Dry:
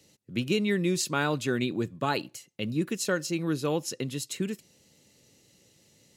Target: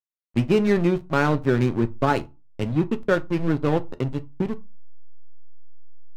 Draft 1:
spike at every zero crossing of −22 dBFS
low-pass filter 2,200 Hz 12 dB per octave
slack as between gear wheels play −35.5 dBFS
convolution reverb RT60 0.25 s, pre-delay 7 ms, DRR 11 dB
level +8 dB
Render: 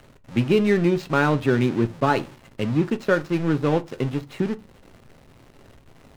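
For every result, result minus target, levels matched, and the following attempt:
spike at every zero crossing: distortion +11 dB; slack as between gear wheels: distortion −6 dB
spike at every zero crossing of −33 dBFS
low-pass filter 2,200 Hz 12 dB per octave
slack as between gear wheels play −35.5 dBFS
convolution reverb RT60 0.25 s, pre-delay 7 ms, DRR 11 dB
level +8 dB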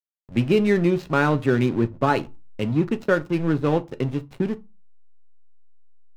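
slack as between gear wheels: distortion −7 dB
spike at every zero crossing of −33 dBFS
low-pass filter 2,200 Hz 12 dB per octave
slack as between gear wheels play −28.5 dBFS
convolution reverb RT60 0.25 s, pre-delay 7 ms, DRR 11 dB
level +8 dB

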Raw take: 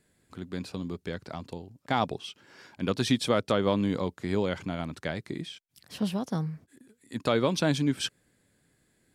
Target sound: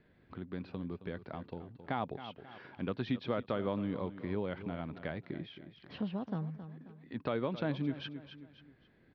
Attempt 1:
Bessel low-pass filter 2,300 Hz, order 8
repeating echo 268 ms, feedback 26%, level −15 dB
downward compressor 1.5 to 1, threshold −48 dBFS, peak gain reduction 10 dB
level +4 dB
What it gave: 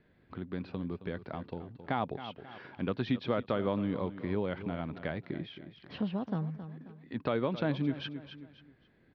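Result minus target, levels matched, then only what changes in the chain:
downward compressor: peak gain reduction −3.5 dB
change: downward compressor 1.5 to 1, threshold −58 dBFS, peak gain reduction 13.5 dB

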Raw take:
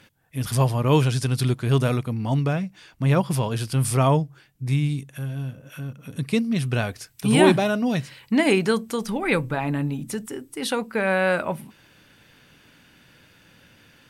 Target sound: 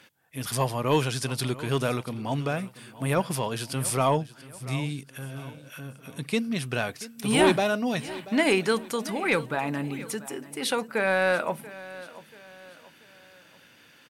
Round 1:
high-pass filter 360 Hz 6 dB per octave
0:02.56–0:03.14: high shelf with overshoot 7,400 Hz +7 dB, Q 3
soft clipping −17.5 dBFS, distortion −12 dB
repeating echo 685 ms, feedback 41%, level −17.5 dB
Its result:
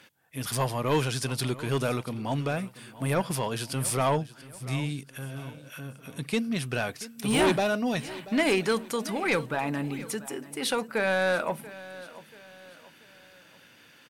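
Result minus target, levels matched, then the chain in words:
soft clipping: distortion +8 dB
high-pass filter 360 Hz 6 dB per octave
0:02.56–0:03.14: high shelf with overshoot 7,400 Hz +7 dB, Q 3
soft clipping −10.5 dBFS, distortion −20 dB
repeating echo 685 ms, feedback 41%, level −17.5 dB

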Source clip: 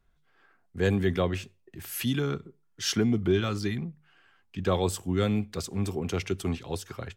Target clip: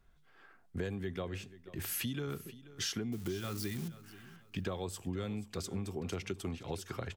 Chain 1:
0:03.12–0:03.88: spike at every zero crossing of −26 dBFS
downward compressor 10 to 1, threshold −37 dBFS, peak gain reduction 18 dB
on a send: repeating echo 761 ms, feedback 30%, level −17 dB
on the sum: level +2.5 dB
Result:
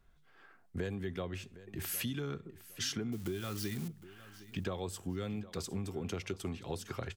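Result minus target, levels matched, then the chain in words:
echo 278 ms late
0:03.12–0:03.88: spike at every zero crossing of −26 dBFS
downward compressor 10 to 1, threshold −37 dBFS, peak gain reduction 18 dB
on a send: repeating echo 483 ms, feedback 30%, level −17 dB
on the sum: level +2.5 dB

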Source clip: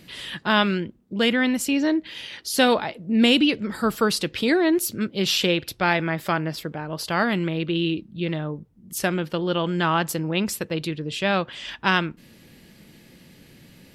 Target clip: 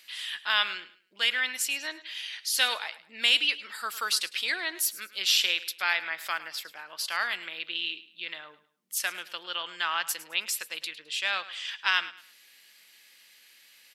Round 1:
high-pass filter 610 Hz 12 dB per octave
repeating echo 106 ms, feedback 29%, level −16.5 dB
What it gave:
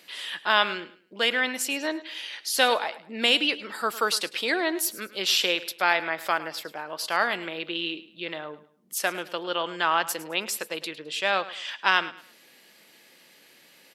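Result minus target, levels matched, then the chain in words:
500 Hz band +13.5 dB
high-pass filter 1,700 Hz 12 dB per octave
repeating echo 106 ms, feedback 29%, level −16.5 dB

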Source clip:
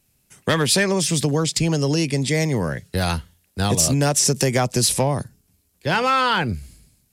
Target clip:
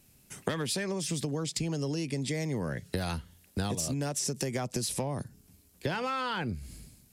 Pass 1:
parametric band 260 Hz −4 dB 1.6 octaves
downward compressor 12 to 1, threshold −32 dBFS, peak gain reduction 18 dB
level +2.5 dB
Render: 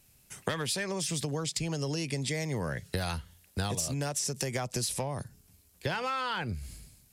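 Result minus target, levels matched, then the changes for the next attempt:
250 Hz band −3.0 dB
change: parametric band 260 Hz +3.5 dB 1.6 octaves

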